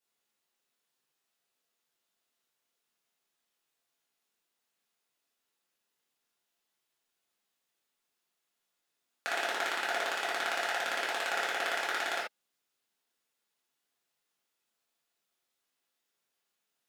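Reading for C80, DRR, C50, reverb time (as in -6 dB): 9.0 dB, -6.5 dB, 3.0 dB, no single decay rate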